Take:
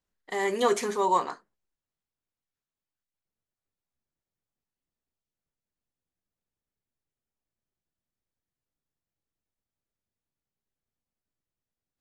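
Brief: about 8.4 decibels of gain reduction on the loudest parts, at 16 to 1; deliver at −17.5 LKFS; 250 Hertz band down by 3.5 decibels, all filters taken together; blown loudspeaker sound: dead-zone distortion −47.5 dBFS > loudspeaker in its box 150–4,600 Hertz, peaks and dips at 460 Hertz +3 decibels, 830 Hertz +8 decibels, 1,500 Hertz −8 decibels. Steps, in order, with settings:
parametric band 250 Hz −6 dB
downward compressor 16 to 1, threshold −27 dBFS
dead-zone distortion −47.5 dBFS
loudspeaker in its box 150–4,600 Hz, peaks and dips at 460 Hz +3 dB, 830 Hz +8 dB, 1,500 Hz −8 dB
level +14.5 dB

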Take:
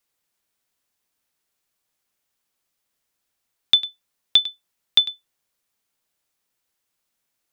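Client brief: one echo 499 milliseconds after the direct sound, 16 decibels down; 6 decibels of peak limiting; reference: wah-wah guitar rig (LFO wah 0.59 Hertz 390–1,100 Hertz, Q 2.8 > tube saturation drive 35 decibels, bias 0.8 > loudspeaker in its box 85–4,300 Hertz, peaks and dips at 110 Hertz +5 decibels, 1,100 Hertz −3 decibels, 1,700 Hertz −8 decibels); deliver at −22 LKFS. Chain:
brickwall limiter −10 dBFS
single-tap delay 499 ms −16 dB
LFO wah 0.59 Hz 390–1,100 Hz, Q 2.8
tube saturation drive 35 dB, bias 0.8
loudspeaker in its box 85–4,300 Hz, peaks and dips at 110 Hz +5 dB, 1,100 Hz −3 dB, 1,700 Hz −8 dB
level +30 dB

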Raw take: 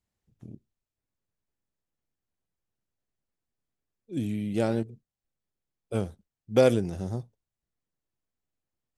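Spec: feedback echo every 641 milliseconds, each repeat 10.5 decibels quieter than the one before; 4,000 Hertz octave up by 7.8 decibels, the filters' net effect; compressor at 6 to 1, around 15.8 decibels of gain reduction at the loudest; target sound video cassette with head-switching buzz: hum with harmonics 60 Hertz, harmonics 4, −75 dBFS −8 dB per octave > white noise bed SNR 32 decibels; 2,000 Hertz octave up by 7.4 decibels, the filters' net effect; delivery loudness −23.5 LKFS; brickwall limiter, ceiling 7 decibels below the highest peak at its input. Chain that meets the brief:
parametric band 2,000 Hz +8 dB
parametric band 4,000 Hz +7 dB
downward compressor 6 to 1, threshold −31 dBFS
brickwall limiter −24.5 dBFS
repeating echo 641 ms, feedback 30%, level −10.5 dB
hum with harmonics 60 Hz, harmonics 4, −75 dBFS −8 dB per octave
white noise bed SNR 32 dB
level +17 dB

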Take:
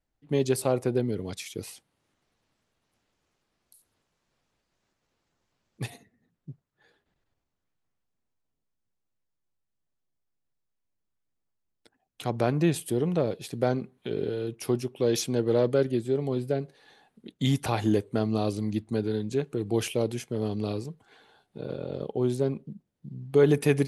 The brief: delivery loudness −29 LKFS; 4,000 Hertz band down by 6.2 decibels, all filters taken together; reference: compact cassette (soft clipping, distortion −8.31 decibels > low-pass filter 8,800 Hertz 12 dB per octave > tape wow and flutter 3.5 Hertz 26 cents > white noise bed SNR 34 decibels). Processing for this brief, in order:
parametric band 4,000 Hz −8 dB
soft clipping −24.5 dBFS
low-pass filter 8,800 Hz 12 dB per octave
tape wow and flutter 3.5 Hz 26 cents
white noise bed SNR 34 dB
level +4 dB

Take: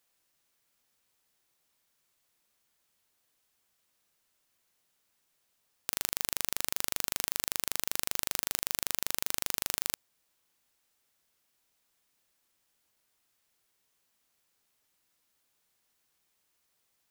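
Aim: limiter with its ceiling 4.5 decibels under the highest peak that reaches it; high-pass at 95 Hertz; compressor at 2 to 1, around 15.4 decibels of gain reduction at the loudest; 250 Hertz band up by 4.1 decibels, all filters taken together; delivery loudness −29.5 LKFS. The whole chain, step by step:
high-pass filter 95 Hz
parametric band 250 Hz +5.5 dB
downward compressor 2 to 1, threshold −53 dBFS
level +20.5 dB
brickwall limiter 0 dBFS

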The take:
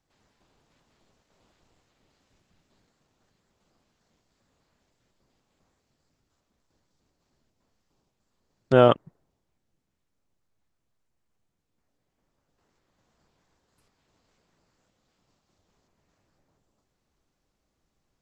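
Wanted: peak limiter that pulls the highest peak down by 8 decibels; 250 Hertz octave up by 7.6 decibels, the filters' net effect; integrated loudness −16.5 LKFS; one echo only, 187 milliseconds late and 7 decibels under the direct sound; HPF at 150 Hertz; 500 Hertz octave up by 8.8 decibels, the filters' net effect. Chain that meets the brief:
high-pass filter 150 Hz
parametric band 250 Hz +6.5 dB
parametric band 500 Hz +9 dB
brickwall limiter −6 dBFS
single-tap delay 187 ms −7 dB
level +3.5 dB

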